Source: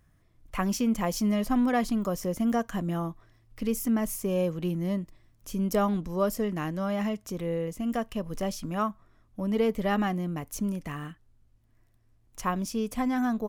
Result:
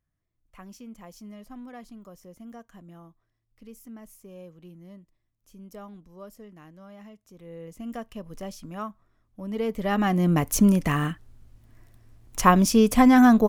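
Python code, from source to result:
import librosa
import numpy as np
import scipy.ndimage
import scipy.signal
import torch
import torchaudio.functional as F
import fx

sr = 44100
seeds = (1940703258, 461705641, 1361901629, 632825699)

y = fx.gain(x, sr, db=fx.line((7.28, -17.5), (7.8, -6.0), (9.4, -6.0), (9.99, 2.5), (10.32, 12.0)))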